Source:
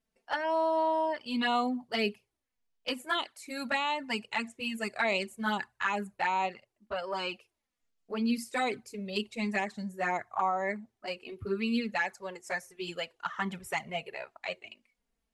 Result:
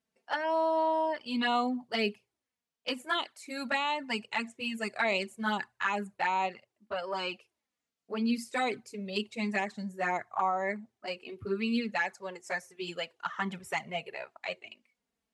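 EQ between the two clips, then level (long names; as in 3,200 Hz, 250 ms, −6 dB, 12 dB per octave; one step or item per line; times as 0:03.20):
high-pass filter 100 Hz
low-pass filter 10,000 Hz 12 dB per octave
0.0 dB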